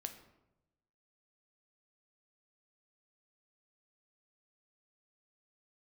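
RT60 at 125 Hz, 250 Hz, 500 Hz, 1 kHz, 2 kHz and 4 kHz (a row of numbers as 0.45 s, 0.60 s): 1.2 s, 1.1 s, 1.0 s, 0.85 s, 0.70 s, 0.55 s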